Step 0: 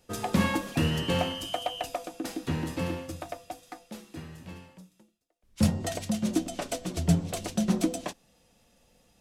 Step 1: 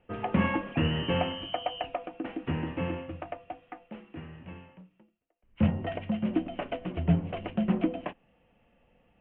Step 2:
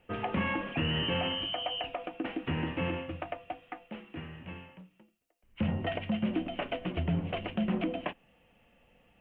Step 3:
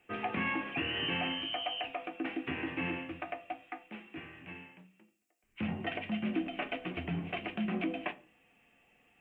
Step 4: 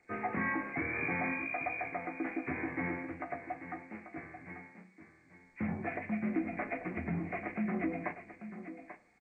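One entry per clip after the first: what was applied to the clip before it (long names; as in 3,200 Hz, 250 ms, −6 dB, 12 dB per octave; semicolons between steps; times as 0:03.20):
Chebyshev low-pass filter 3,000 Hz, order 6
high-shelf EQ 2,400 Hz +10 dB; brickwall limiter −21.5 dBFS, peak gain reduction 9.5 dB
convolution reverb RT60 0.40 s, pre-delay 3 ms, DRR 8.5 dB
hearing-aid frequency compression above 1,500 Hz 1.5 to 1; single-tap delay 839 ms −11.5 dB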